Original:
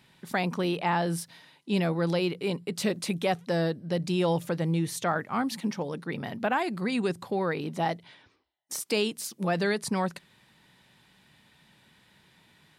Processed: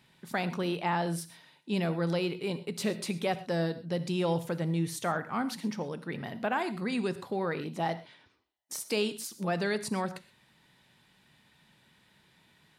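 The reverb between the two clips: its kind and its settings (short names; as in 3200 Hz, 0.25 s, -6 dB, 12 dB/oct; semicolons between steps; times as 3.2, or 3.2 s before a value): non-linear reverb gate 0.15 s flat, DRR 12 dB; gain -3.5 dB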